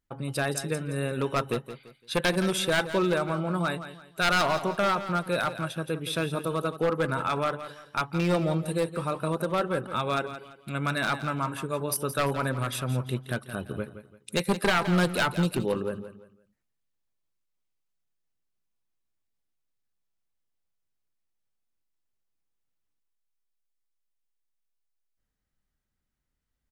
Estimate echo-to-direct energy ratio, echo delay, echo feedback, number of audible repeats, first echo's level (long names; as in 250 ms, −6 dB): −11.5 dB, 170 ms, 31%, 3, −12.0 dB